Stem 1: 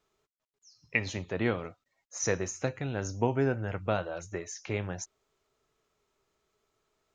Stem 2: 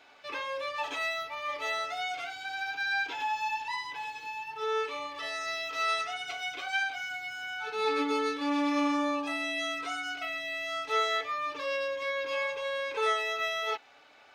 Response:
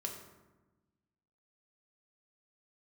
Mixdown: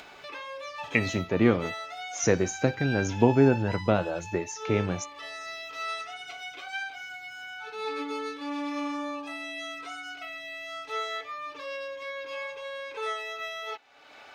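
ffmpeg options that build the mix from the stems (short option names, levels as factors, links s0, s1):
-filter_complex "[0:a]equalizer=f=250:t=o:w=1.9:g=7.5,volume=1.33[s0];[1:a]volume=0.596[s1];[s0][s1]amix=inputs=2:normalize=0,acompressor=mode=upward:threshold=0.0141:ratio=2.5"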